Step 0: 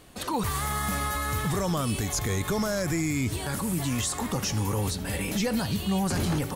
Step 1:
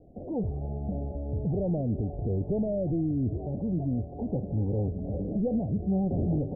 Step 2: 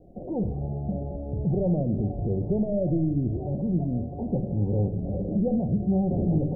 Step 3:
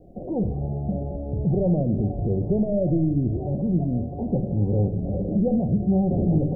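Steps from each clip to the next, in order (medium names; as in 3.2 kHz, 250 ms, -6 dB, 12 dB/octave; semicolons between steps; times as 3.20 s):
steep low-pass 720 Hz 72 dB/octave
simulated room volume 2000 m³, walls furnished, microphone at 0.98 m; trim +2 dB
band-stop 880 Hz, Q 25; trim +3 dB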